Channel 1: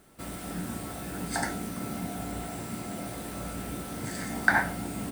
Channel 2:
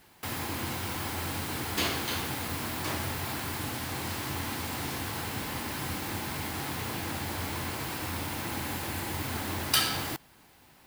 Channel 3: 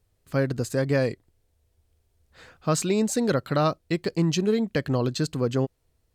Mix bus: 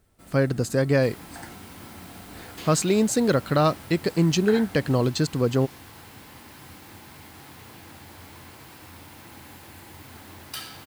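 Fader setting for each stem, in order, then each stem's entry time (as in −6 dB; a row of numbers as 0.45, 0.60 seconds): −11.5, −11.0, +2.5 decibels; 0.00, 0.80, 0.00 seconds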